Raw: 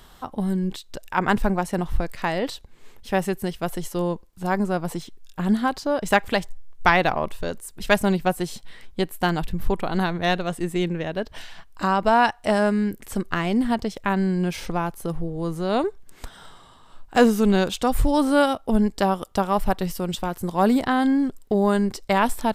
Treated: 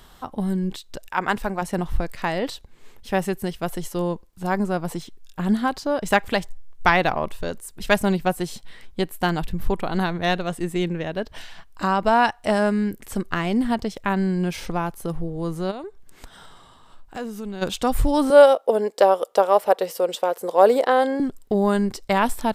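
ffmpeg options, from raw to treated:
-filter_complex "[0:a]asettb=1/sr,asplit=3[a][b][c];[a]atrim=end=1.084[d];[b]atrim=start=1.08:end=1.62,asetpts=PTS-STARTPTS,afade=t=in:d=0.004:c=qsin,afade=t=out:st=0.536:d=0.004:c=qsin,lowshelf=f=310:g=-10[e];[c]atrim=start=1.616[f];[d][e]acrossfade=d=0.004:c1=hsin:c2=qsin[g];[g][f]acrossfade=d=0.004:c1=qsin:c2=hsin,asplit=3[h][i][j];[h]afade=t=out:st=15.7:d=0.02[k];[i]acompressor=threshold=-40dB:ratio=2:attack=3.2:release=140:knee=1:detection=peak,afade=t=in:st=15.7:d=0.02,afade=t=out:st=17.61:d=0.02[l];[j]afade=t=in:st=17.61:d=0.02[m];[k][l][m]amix=inputs=3:normalize=0,asettb=1/sr,asplit=3[n][o][p];[n]atrim=end=18.304[q];[o]atrim=start=18.3:end=21.2,asetpts=PTS-STARTPTS,afade=t=in:d=0.004:c=qsin,afade=t=out:st=2.896:d=0.004:c=qsin,highpass=f=500:t=q:w=4.8[r];[p]atrim=start=21.196[s];[q][r]acrossfade=d=0.004:c1=hsin:c2=qsin[t];[t][s]acrossfade=d=0.004:c1=qsin:c2=hsin"

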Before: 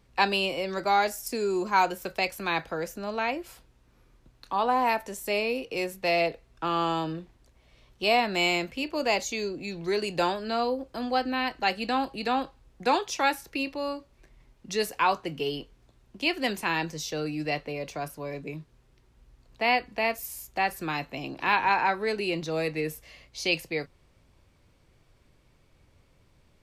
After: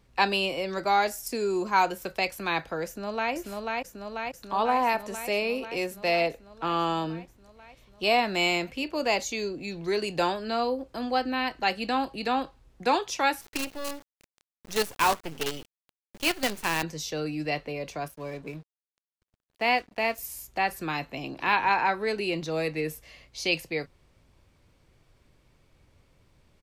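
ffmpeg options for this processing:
-filter_complex "[0:a]asplit=2[a][b];[b]afade=t=in:st=2.86:d=0.01,afade=t=out:st=3.33:d=0.01,aecho=0:1:490|980|1470|1960|2450|2940|3430|3920|4410|4900|5390|5880:0.749894|0.562421|0.421815|0.316362|0.237271|0.177953|0.133465|0.100099|0.0750741|0.0563056|0.0422292|0.0316719[c];[a][c]amix=inputs=2:normalize=0,asettb=1/sr,asplit=3[d][e][f];[d]atrim=end=13.414[g];[e]atrim=start=13.41:end=16.83,asetpts=PTS-STARTPTS,afade=t=in:d=0.004:c=qsin,afade=t=out:st=3.416:d=0.004:c=qsin,acrusher=bits=5:dc=4:mix=0:aa=0.000001[h];[f]atrim=start=16.826[i];[g][h]acrossfade=d=0.004:c1=hsin:c2=qsin[j];[j][i]acrossfade=d=0.004:c1=qsin:c2=hsin,asettb=1/sr,asplit=3[k][l][m];[k]atrim=end=18.064[n];[l]atrim=start=18.06:end=20.18,asetpts=PTS-STARTPTS,afade=t=in:d=0.004:c=qsin,afade=t=out:st=2.116:d=0.004:c=qsin,aeval=exprs='sgn(val(0))*max(abs(val(0))-0.00299,0)':c=same[o];[m]atrim=start=20.176[p];[n][o]acrossfade=d=0.004:c1=hsin:c2=qsin[q];[q][p]acrossfade=d=0.004:c1=qsin:c2=hsin"

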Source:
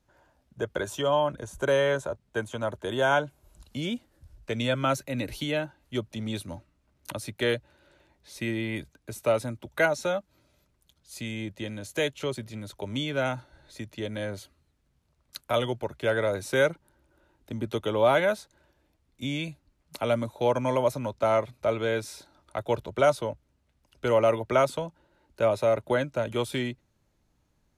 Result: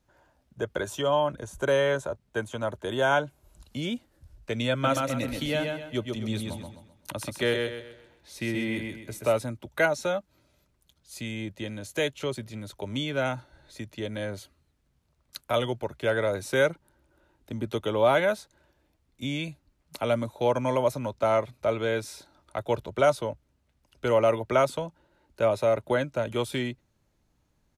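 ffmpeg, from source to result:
-filter_complex "[0:a]asplit=3[a][b][c];[a]afade=t=out:st=4.83:d=0.02[d];[b]aecho=1:1:129|258|387|516|645:0.631|0.227|0.0818|0.0294|0.0106,afade=t=in:st=4.83:d=0.02,afade=t=out:st=9.37:d=0.02[e];[c]afade=t=in:st=9.37:d=0.02[f];[d][e][f]amix=inputs=3:normalize=0"

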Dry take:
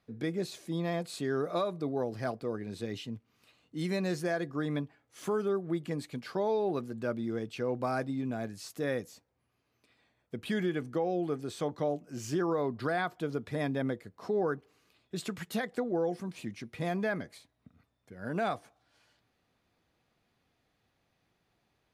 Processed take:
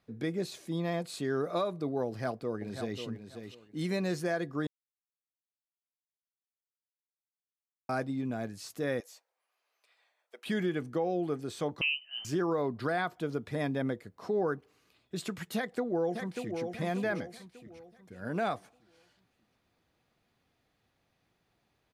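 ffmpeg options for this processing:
-filter_complex "[0:a]asplit=2[a][b];[b]afade=t=in:st=2.07:d=0.01,afade=t=out:st=3:d=0.01,aecho=0:1:540|1080|1620:0.398107|0.0796214|0.0159243[c];[a][c]amix=inputs=2:normalize=0,asettb=1/sr,asplit=3[d][e][f];[d]atrim=end=9.004[g];[e]atrim=start=9:end=10.46,asetpts=PTS-STARTPTS,afade=t=in:d=0.004:c=qsin,afade=t=out:st=1.456:d=0.004:c=qsin,highpass=f=560:w=0.5412,highpass=f=560:w=1.3066[h];[f]atrim=start=10.456[i];[g][h]acrossfade=d=0.004:c1=hsin:c2=qsin[j];[j][i]acrossfade=d=0.004:c1=qsin:c2=hsin,asettb=1/sr,asplit=3[k][l][m];[k]atrim=end=11.814[n];[l]atrim=start=11.81:end=12.25,asetpts=PTS-STARTPTS,afade=t=in:d=0.004:c=qsin,afade=t=out:st=0.436:d=0.004:c=qsin,lowpass=f=2.7k:t=q:w=0.5098,lowpass=f=2.7k:t=q:w=0.6013,lowpass=f=2.7k:t=q:w=0.9,lowpass=f=2.7k:t=q:w=2.563,afreqshift=-3200[o];[m]atrim=start=12.246[p];[n][o]acrossfade=d=0.004:c1=hsin:c2=qsin[q];[q][p]acrossfade=d=0.004:c1=qsin:c2=hsin,asplit=2[r][s];[s]afade=t=in:st=15.56:d=0.01,afade=t=out:st=16.61:d=0.01,aecho=0:1:590|1180|1770|2360|2950:0.501187|0.200475|0.08019|0.032076|0.0128304[t];[r][t]amix=inputs=2:normalize=0,asplit=3[u][v][w];[u]atrim=end=4.67,asetpts=PTS-STARTPTS,afade=t=out:st=4.666:d=0.004:c=hsin[x];[v]atrim=start=4.67:end=7.89,asetpts=PTS-STARTPTS,volume=0[y];[w]atrim=start=7.89,asetpts=PTS-STARTPTS,afade=t=in:d=0.004:c=hsin[z];[x][y][z]concat=n=3:v=0:a=1"

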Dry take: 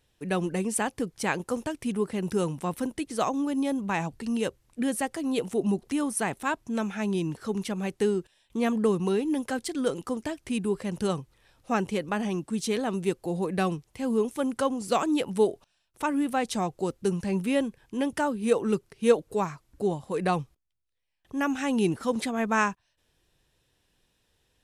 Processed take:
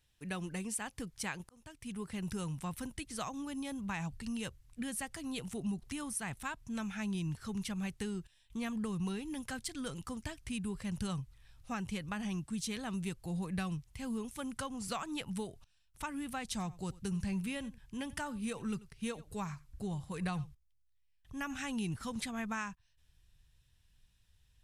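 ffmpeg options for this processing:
-filter_complex "[0:a]asettb=1/sr,asplit=3[a][b][c];[a]atrim=end=14.744[d];[b]atrim=start=14.74:end=15.22,asetpts=PTS-STARTPTS,afade=t=in:d=0.004:c=qsin,afade=t=out:st=0.476:d=0.004:c=qsin,equalizer=f=1.1k:t=o:w=2.6:g=5[e];[c]atrim=start=15.216[f];[d][e]acrossfade=d=0.004:c1=hsin:c2=qsin[g];[g][f]acrossfade=d=0.004:c1=qsin:c2=hsin,asettb=1/sr,asplit=3[h][i][j];[h]atrim=end=16.434[k];[i]atrim=start=16.43:end=21.71,asetpts=PTS-STARTPTS,afade=t=in:d=0.004:c=qsin,afade=t=out:st=5.276:d=0.004:c=qsin,aecho=1:1:89:0.0841,atrim=end_sample=232848[l];[j]atrim=start=21.706[m];[k][l]acrossfade=d=0.004:c1=hsin:c2=qsin[n];[n][m]acrossfade=d=0.004:c1=qsin:c2=hsin,asplit=2[o][p];[o]atrim=end=1.49,asetpts=PTS-STARTPTS,afade=t=out:st=1.486:d=0.004:c=hsin[q];[p]atrim=start=1.49,asetpts=PTS-STARTPTS,afade=t=in:d=0.65[r];[q][r]concat=n=2:v=0:a=1,equalizer=f=440:t=o:w=2.1:g=-11,acompressor=threshold=-31dB:ratio=6,asubboost=boost=3.5:cutoff=160,volume=-3.5dB"

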